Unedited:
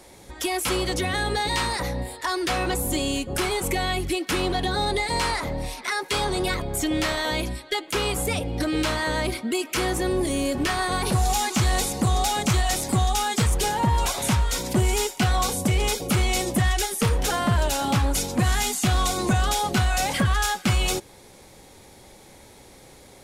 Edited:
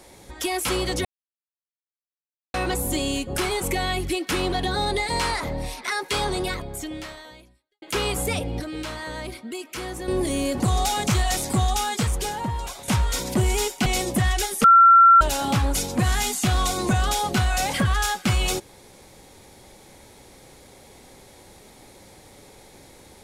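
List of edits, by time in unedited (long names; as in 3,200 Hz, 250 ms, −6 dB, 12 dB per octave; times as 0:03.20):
0:01.05–0:02.54: silence
0:06.29–0:07.82: fade out quadratic
0:08.60–0:10.08: clip gain −8 dB
0:10.60–0:11.99: remove
0:13.09–0:14.27: fade out, to −13 dB
0:15.25–0:16.26: remove
0:17.04–0:17.61: beep over 1,360 Hz −8.5 dBFS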